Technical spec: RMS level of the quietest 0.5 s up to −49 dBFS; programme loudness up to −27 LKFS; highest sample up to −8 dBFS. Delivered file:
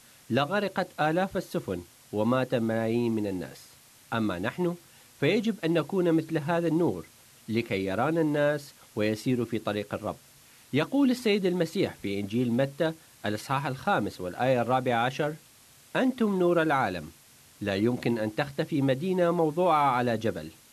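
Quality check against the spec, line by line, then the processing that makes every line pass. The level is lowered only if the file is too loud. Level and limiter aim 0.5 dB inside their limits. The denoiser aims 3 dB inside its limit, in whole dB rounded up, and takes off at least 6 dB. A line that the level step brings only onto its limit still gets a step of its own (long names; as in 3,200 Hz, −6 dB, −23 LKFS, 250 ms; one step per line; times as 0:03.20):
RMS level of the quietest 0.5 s −56 dBFS: in spec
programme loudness −28.0 LKFS: in spec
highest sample −13.0 dBFS: in spec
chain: no processing needed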